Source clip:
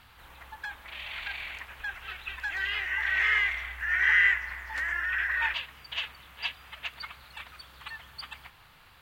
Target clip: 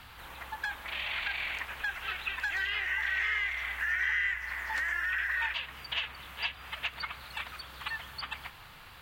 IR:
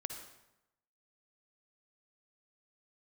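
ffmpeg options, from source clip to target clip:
-filter_complex "[0:a]acrossover=split=140|3500[a][b][c];[a]acompressor=threshold=-58dB:ratio=4[d];[b]acompressor=threshold=-37dB:ratio=4[e];[c]acompressor=threshold=-51dB:ratio=4[f];[d][e][f]amix=inputs=3:normalize=0,volume=5.5dB"

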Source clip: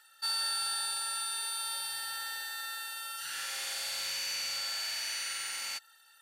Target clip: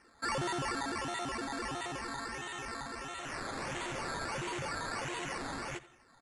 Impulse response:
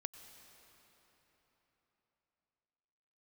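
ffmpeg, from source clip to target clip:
-filter_complex "[0:a]acrusher=samples=12:mix=1:aa=0.000001:lfo=1:lforange=7.2:lforate=1.5,asplit=2[a][b];[b]adelay=87,lowpass=f=4.4k:p=1,volume=-17dB,asplit=2[c][d];[d]adelay=87,lowpass=f=4.4k:p=1,volume=0.35,asplit=2[e][f];[f]adelay=87,lowpass=f=4.4k:p=1,volume=0.35[g];[c][e][g]amix=inputs=3:normalize=0[h];[a][h]amix=inputs=2:normalize=0,aresample=22050,aresample=44100,volume=-2dB"

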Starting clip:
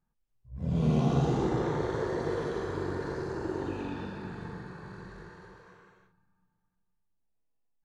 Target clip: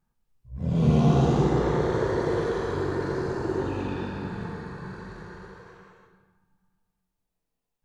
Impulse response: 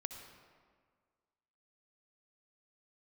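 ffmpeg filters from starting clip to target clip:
-filter_complex "[1:a]atrim=start_sample=2205,afade=t=out:st=0.4:d=0.01,atrim=end_sample=18081,asetrate=43218,aresample=44100[a];[0:a][a]afir=irnorm=-1:irlink=0,volume=7.5dB"

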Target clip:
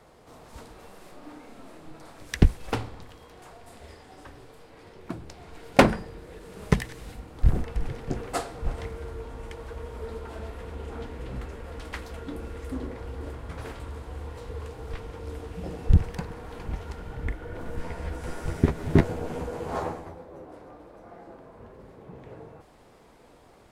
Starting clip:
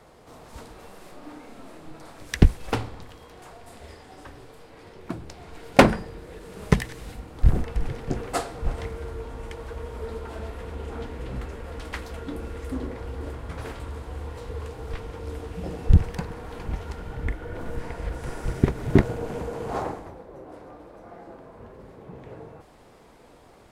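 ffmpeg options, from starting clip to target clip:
-filter_complex "[0:a]asettb=1/sr,asplit=3[a][b][c];[a]atrim=end=17.764[d];[b]atrim=start=17.76:end=20.46,asetpts=PTS-STARTPTS,afade=t=in:d=0.004:c=qsin,afade=t=out:st=2.696:d=0.004:c=qsin,asplit=2[e][f];[f]adelay=12,volume=-3.5dB[g];[e][g]amix=inputs=2:normalize=0,atrim=end_sample=119070[h];[c]atrim=start=20.456[i];[d][h]acrossfade=d=0.004:c1=hsin:c2=qsin[j];[j][i]acrossfade=d=0.004:c1=qsin:c2=hsin,volume=-2.5dB"

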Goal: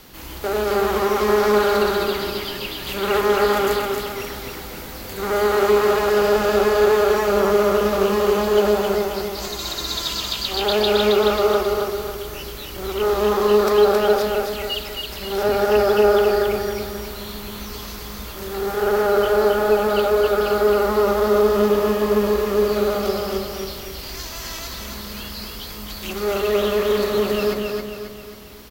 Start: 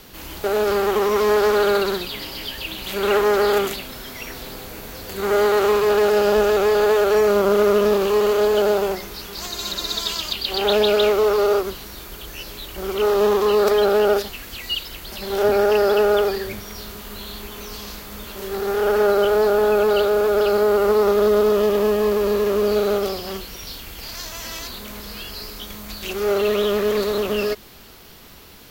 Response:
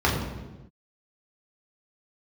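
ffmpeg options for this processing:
-filter_complex "[0:a]aecho=1:1:269|538|807|1076|1345|1614:0.668|0.301|0.135|0.0609|0.0274|0.0123,asplit=2[a][b];[1:a]atrim=start_sample=2205[c];[b][c]afir=irnorm=-1:irlink=0,volume=-28.5dB[d];[a][d]amix=inputs=2:normalize=0,volume=-1.5dB"

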